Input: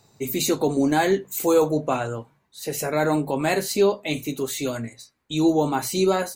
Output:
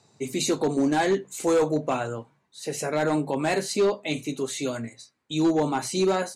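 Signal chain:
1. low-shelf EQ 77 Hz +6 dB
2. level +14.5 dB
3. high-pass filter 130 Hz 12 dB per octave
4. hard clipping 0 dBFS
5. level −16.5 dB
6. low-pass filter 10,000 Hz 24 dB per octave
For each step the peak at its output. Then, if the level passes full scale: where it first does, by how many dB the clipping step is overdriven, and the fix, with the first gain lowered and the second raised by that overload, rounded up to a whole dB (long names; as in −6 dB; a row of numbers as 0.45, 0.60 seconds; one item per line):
−8.0, +6.5, +7.5, 0.0, −16.5, −16.0 dBFS
step 2, 7.5 dB
step 2 +6.5 dB, step 5 −8.5 dB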